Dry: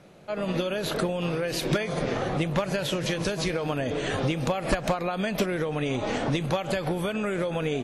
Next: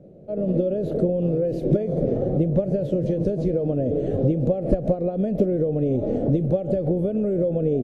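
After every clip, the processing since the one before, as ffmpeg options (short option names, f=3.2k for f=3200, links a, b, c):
-af "firequalizer=gain_entry='entry(560,0);entry(960,-28);entry(2300,-30)':delay=0.05:min_phase=1,volume=6.5dB"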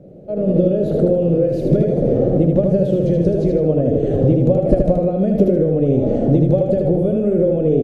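-af "aecho=1:1:77|154|231|308|385:0.668|0.281|0.118|0.0495|0.0208,volume=5dB"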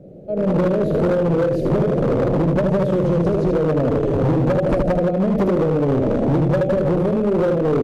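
-af "volume=14dB,asoftclip=hard,volume=-14dB"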